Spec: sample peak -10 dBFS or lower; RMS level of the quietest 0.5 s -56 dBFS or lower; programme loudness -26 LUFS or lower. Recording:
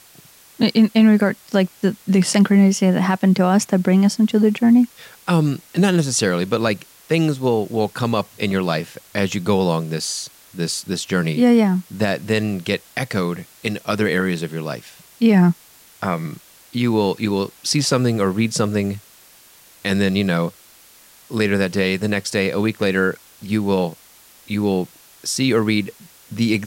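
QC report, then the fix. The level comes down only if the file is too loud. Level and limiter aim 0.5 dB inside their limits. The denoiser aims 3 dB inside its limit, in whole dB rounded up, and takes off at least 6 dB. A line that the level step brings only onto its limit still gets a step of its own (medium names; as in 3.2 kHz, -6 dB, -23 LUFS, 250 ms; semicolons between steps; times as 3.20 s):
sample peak -5.0 dBFS: fail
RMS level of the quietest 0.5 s -48 dBFS: fail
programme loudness -19.0 LUFS: fail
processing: noise reduction 6 dB, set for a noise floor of -48 dBFS; trim -7.5 dB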